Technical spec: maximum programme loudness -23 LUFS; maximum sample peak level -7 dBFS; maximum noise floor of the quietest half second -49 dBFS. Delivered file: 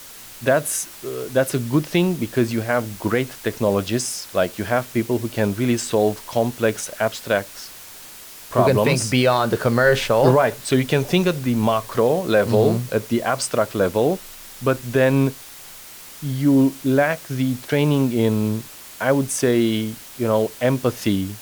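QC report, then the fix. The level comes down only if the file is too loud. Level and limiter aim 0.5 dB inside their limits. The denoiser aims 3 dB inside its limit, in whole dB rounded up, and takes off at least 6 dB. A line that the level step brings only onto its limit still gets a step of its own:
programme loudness -20.5 LUFS: fail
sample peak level -2.0 dBFS: fail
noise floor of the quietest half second -40 dBFS: fail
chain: noise reduction 9 dB, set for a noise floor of -40 dBFS; trim -3 dB; peak limiter -7.5 dBFS

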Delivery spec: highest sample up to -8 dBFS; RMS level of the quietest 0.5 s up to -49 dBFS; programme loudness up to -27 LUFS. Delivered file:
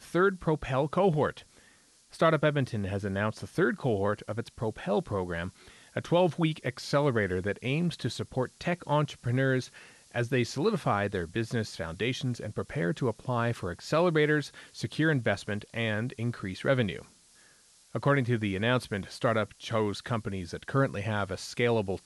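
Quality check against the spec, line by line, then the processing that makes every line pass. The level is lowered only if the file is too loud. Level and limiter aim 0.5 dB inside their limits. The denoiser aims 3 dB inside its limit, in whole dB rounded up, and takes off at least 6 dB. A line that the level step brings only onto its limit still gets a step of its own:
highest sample -12.0 dBFS: pass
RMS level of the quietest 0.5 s -61 dBFS: pass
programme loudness -30.0 LUFS: pass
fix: none needed

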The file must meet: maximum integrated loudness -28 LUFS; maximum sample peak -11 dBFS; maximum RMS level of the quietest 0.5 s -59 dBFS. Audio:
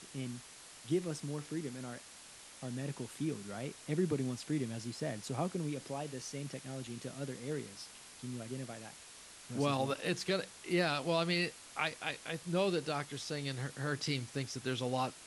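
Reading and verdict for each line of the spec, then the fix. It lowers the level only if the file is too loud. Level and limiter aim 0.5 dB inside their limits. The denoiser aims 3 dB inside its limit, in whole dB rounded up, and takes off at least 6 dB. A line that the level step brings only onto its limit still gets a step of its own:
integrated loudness -37.5 LUFS: pass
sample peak -19.0 dBFS: pass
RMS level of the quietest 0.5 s -54 dBFS: fail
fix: noise reduction 8 dB, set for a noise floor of -54 dBFS

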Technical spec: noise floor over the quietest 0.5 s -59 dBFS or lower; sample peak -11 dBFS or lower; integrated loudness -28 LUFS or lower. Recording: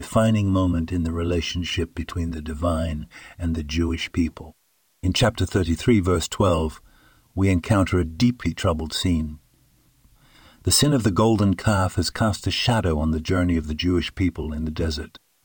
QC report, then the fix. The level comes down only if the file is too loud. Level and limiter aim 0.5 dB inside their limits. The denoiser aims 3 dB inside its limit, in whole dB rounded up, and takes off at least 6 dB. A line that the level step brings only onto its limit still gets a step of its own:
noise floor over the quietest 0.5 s -65 dBFS: pass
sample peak -5.0 dBFS: fail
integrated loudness -22.5 LUFS: fail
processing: trim -6 dB; peak limiter -11.5 dBFS

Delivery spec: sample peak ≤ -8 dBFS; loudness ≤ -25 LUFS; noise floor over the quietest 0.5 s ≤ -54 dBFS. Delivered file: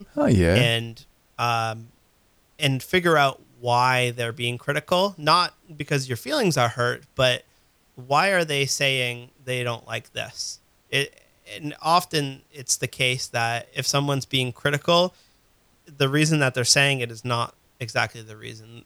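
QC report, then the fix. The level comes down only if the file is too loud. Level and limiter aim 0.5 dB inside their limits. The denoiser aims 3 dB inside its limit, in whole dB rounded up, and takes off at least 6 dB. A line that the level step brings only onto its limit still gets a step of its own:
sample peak -5.0 dBFS: fail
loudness -22.5 LUFS: fail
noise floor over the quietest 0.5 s -62 dBFS: pass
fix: trim -3 dB; peak limiter -8.5 dBFS

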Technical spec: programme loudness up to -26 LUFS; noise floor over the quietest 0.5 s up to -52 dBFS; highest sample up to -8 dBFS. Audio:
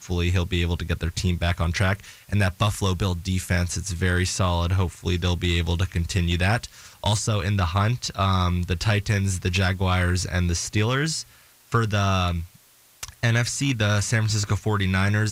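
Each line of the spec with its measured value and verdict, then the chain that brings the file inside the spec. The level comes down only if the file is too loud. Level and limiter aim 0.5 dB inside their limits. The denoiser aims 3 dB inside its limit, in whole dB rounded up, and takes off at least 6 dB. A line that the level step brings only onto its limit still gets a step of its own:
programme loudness -24.0 LUFS: fail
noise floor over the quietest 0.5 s -55 dBFS: pass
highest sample -11.5 dBFS: pass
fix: trim -2.5 dB

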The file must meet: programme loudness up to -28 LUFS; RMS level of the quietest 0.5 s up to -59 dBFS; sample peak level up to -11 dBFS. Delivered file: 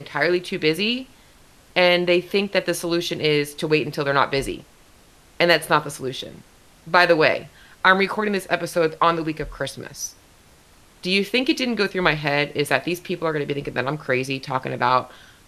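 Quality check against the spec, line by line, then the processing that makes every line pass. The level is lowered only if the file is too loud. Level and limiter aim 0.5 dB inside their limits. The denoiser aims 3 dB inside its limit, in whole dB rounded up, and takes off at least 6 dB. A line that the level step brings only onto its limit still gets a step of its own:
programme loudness -21.0 LUFS: fail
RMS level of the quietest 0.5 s -52 dBFS: fail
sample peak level -2.5 dBFS: fail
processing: trim -7.5 dB; peak limiter -11.5 dBFS

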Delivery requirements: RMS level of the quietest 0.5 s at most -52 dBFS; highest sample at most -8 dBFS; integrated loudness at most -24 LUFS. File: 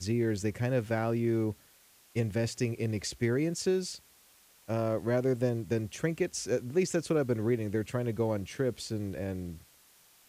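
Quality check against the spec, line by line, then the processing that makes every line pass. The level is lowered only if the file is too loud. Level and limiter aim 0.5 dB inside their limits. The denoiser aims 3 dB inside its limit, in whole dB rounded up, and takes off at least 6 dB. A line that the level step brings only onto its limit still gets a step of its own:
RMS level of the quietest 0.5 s -61 dBFS: pass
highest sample -16.0 dBFS: pass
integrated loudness -31.5 LUFS: pass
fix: none needed

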